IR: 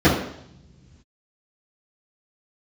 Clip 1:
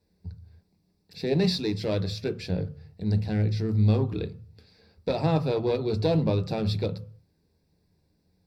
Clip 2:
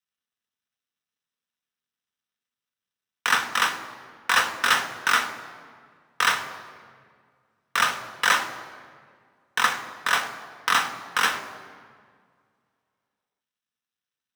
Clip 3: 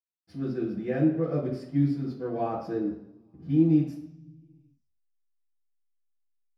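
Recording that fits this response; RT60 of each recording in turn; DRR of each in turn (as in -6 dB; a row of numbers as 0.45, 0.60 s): 3; 0.50 s, 1.9 s, not exponential; 9.0, 6.0, -13.0 dB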